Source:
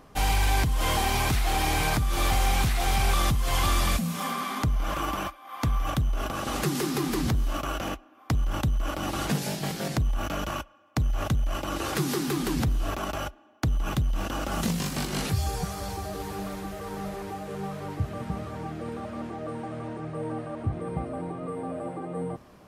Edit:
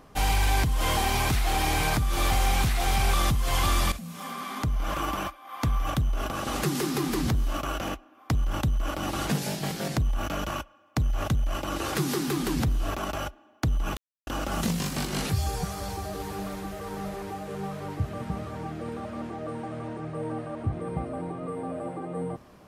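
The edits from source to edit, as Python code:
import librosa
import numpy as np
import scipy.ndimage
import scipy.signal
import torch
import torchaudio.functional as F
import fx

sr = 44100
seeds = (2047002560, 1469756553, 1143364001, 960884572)

y = fx.edit(x, sr, fx.fade_in_from(start_s=3.92, length_s=1.01, floor_db=-13.5),
    fx.silence(start_s=13.97, length_s=0.3), tone=tone)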